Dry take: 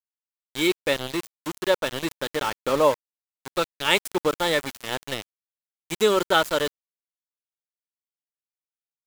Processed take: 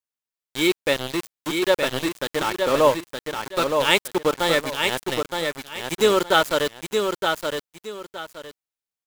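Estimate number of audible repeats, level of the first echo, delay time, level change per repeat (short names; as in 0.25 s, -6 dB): 2, -5.0 dB, 0.918 s, -11.5 dB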